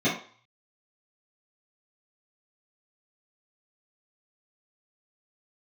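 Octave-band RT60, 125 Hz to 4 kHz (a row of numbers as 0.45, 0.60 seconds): 0.55, 0.35, 0.40, 0.55, 0.45, 0.45 seconds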